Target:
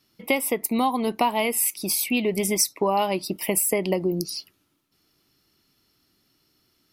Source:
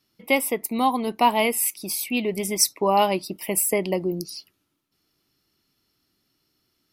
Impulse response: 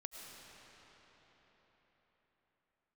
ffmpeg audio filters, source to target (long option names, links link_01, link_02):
-af "acompressor=threshold=-24dB:ratio=4,volume=4.5dB"